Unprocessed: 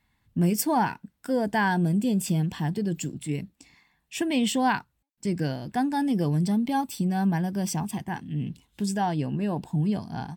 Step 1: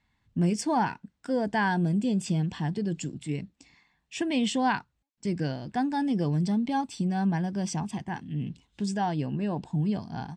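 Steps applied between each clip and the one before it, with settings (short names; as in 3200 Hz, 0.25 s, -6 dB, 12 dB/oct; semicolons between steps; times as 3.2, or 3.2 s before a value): LPF 7500 Hz 24 dB/oct; gain -2 dB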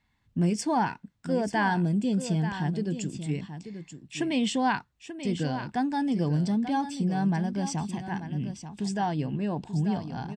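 echo 0.886 s -10.5 dB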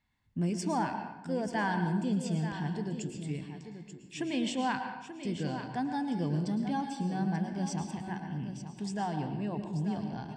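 reverb RT60 0.90 s, pre-delay 0.105 s, DRR 6.5 dB; gain -6 dB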